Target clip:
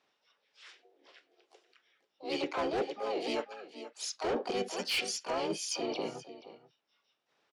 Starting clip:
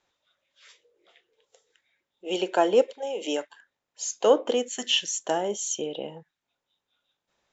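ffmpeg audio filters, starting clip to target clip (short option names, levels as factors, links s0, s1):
-filter_complex "[0:a]asplit=2[s0][s1];[s1]aecho=0:1:480:0.133[s2];[s0][s2]amix=inputs=2:normalize=0,adynamicsmooth=sensitivity=1:basefreq=3200,highpass=210,asplit=3[s3][s4][s5];[s4]asetrate=35002,aresample=44100,atempo=1.25992,volume=1[s6];[s5]asetrate=66075,aresample=44100,atempo=0.66742,volume=0.708[s7];[s3][s6][s7]amix=inputs=3:normalize=0,lowpass=6600,highshelf=f=3000:g=11.5,asoftclip=type=tanh:threshold=0.168,areverse,acompressor=threshold=0.0447:ratio=6,areverse,volume=0.668"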